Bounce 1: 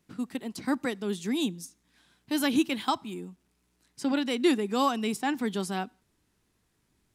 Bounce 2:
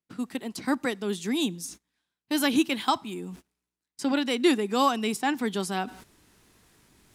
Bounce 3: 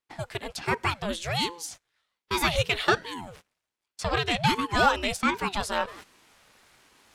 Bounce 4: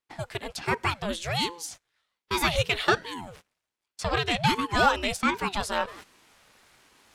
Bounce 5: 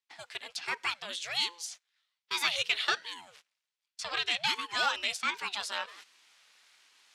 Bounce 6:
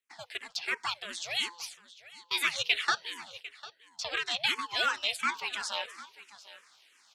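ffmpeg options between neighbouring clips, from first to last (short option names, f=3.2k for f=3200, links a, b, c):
-af "agate=range=-25dB:threshold=-52dB:ratio=16:detection=peak,lowshelf=f=250:g=-5,areverse,acompressor=mode=upward:threshold=-36dB:ratio=2.5,areverse,volume=3.5dB"
-filter_complex "[0:a]asplit=2[a][b];[b]highpass=f=720:p=1,volume=13dB,asoftclip=type=tanh:threshold=-9dB[c];[a][c]amix=inputs=2:normalize=0,lowpass=f=3.5k:p=1,volume=-6dB,lowshelf=f=270:g=-6.5,aeval=exprs='val(0)*sin(2*PI*420*n/s+420*0.65/1.3*sin(2*PI*1.3*n/s))':c=same,volume=2dB"
-af anull
-af "bandpass=f=4k:t=q:w=0.72:csg=0"
-filter_complex "[0:a]aecho=1:1:750:0.141,asplit=2[a][b];[b]afreqshift=-2.9[c];[a][c]amix=inputs=2:normalize=1,volume=3.5dB"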